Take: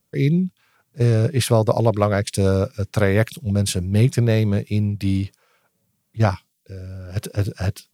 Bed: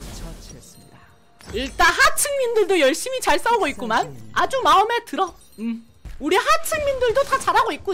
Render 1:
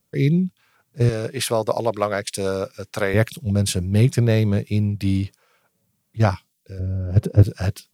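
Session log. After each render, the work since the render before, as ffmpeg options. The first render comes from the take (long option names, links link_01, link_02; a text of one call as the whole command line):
ffmpeg -i in.wav -filter_complex "[0:a]asettb=1/sr,asplit=3[link_01][link_02][link_03];[link_01]atrim=end=1.094[link_04];[link_02]atrim=start=1.09:end=3.14,asetpts=PTS-STARTPTS,afade=type=in:duration=0.004:curve=qsin,afade=type=out:start_time=2.046:duration=0.004:curve=qsin,highpass=frequency=480:poles=1[link_05];[link_03]atrim=start=3.136[link_06];[link_04][link_05]acrossfade=duration=0.004:curve1=hsin:curve2=qsin[link_07];[link_07][link_06]acrossfade=duration=0.004:curve1=qsin:curve2=hsin,asettb=1/sr,asplit=3[link_08][link_09][link_10];[link_08]atrim=end=6.794[link_11];[link_09]atrim=start=6.79:end=7.43,asetpts=PTS-STARTPTS,afade=type=in:duration=0.004:curve=qsin,afade=type=out:start_time=0.636:duration=0.004:curve=qsin,tiltshelf=frequency=970:gain=9.5[link_12];[link_10]atrim=start=7.426[link_13];[link_11][link_12]acrossfade=duration=0.004:curve1=hsin:curve2=qsin[link_14];[link_14][link_13]acrossfade=duration=0.004:curve1=qsin:curve2=hsin" out.wav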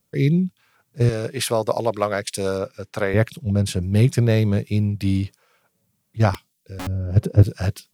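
ffmpeg -i in.wav -filter_complex "[0:a]asettb=1/sr,asplit=3[link_01][link_02][link_03];[link_01]atrim=end=2.584[link_04];[link_02]atrim=start=2.58:end=3.83,asetpts=PTS-STARTPTS,afade=type=in:duration=0.004:curve=qsin,afade=type=out:start_time=1.246:duration=0.004:curve=qsin,highshelf=frequency=3500:gain=-7.5[link_05];[link_03]atrim=start=3.826[link_06];[link_04][link_05]acrossfade=duration=0.004:curve1=hsin:curve2=qsin[link_07];[link_07][link_06]acrossfade=duration=0.004:curve1=qsin:curve2=hsin,asettb=1/sr,asplit=3[link_08][link_09][link_10];[link_08]atrim=end=6.344[link_11];[link_09]atrim=start=6.34:end=6.87,asetpts=PTS-STARTPTS,afade=type=in:duration=0.004:curve=qsin,afade=type=out:start_time=0.526:duration=0.004:curve=qsin,aeval=exprs='(mod(16.8*val(0)+1,2)-1)/16.8':channel_layout=same[link_12];[link_10]atrim=start=6.866[link_13];[link_11][link_12]acrossfade=duration=0.004:curve1=hsin:curve2=qsin[link_14];[link_14][link_13]acrossfade=duration=0.004:curve1=qsin:curve2=hsin" out.wav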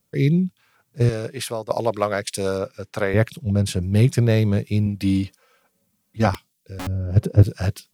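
ffmpeg -i in.wav -filter_complex "[0:a]asettb=1/sr,asplit=3[link_01][link_02][link_03];[link_01]atrim=end=4.864[link_04];[link_02]atrim=start=4.86:end=6.27,asetpts=PTS-STARTPTS,afade=type=in:duration=0.004:curve=qsin,afade=type=out:start_time=1.406:duration=0.004:curve=qsin,aecho=1:1:3.9:0.65,atrim=end_sample=62181[link_05];[link_03]atrim=start=6.266[link_06];[link_04][link_05]acrossfade=duration=0.004:curve1=hsin:curve2=qsin[link_07];[link_07][link_06]acrossfade=duration=0.004:curve1=qsin:curve2=hsin,asplit=2[link_08][link_09];[link_08]atrim=end=1.7,asetpts=PTS-STARTPTS,afade=type=out:start_time=1.02:duration=0.68:silence=0.298538[link_10];[link_09]atrim=start=1.7,asetpts=PTS-STARTPTS,afade=type=in:duration=0.004:curve=hsin:silence=0.298538[link_11];[link_10][link_11]concat=n=2:v=0:a=1" out.wav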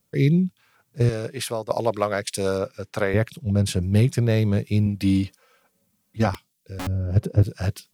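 ffmpeg -i in.wav -af "alimiter=limit=-8.5dB:level=0:latency=1:release=496" out.wav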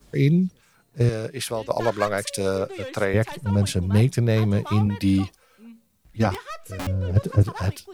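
ffmpeg -i in.wav -i bed.wav -filter_complex "[1:a]volume=-19dB[link_01];[0:a][link_01]amix=inputs=2:normalize=0" out.wav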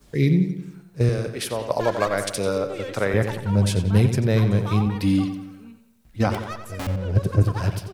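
ffmpeg -i in.wav -filter_complex "[0:a]asplit=2[link_01][link_02];[link_02]adelay=90,lowpass=frequency=4400:poles=1,volume=-8.5dB,asplit=2[link_03][link_04];[link_04]adelay=90,lowpass=frequency=4400:poles=1,volume=0.54,asplit=2[link_05][link_06];[link_06]adelay=90,lowpass=frequency=4400:poles=1,volume=0.54,asplit=2[link_07][link_08];[link_08]adelay=90,lowpass=frequency=4400:poles=1,volume=0.54,asplit=2[link_09][link_10];[link_10]adelay=90,lowpass=frequency=4400:poles=1,volume=0.54,asplit=2[link_11][link_12];[link_12]adelay=90,lowpass=frequency=4400:poles=1,volume=0.54[link_13];[link_01][link_03][link_05][link_07][link_09][link_11][link_13]amix=inputs=7:normalize=0" out.wav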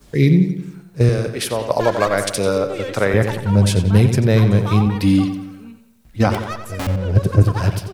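ffmpeg -i in.wav -af "volume=5.5dB,alimiter=limit=-3dB:level=0:latency=1" out.wav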